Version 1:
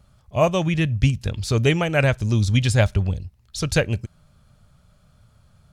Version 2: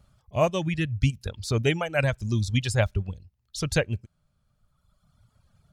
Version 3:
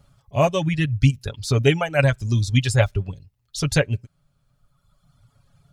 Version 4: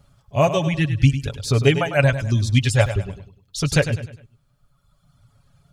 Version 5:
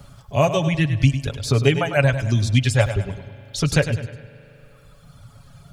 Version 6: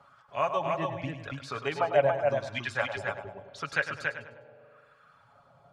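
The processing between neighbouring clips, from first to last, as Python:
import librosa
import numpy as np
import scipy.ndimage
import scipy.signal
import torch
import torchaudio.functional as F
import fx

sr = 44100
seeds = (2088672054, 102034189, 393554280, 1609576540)

y1 = fx.dereverb_blind(x, sr, rt60_s=1.6)
y1 = y1 * 10.0 ** (-4.0 / 20.0)
y2 = y1 + 0.55 * np.pad(y1, (int(7.2 * sr / 1000.0), 0))[:len(y1)]
y2 = y2 * 10.0 ** (3.5 / 20.0)
y3 = fx.echo_feedback(y2, sr, ms=101, feedback_pct=38, wet_db=-11.0)
y3 = y3 * 10.0 ** (1.0 / 20.0)
y4 = fx.rev_spring(y3, sr, rt60_s=2.1, pass_ms=(39,), chirp_ms=50, drr_db=20.0)
y4 = fx.band_squash(y4, sr, depth_pct=40)
y5 = fx.wah_lfo(y4, sr, hz=0.86, low_hz=670.0, high_hz=1500.0, q=2.2)
y5 = y5 + 10.0 ** (-3.5 / 20.0) * np.pad(y5, (int(282 * sr / 1000.0), 0))[:len(y5)]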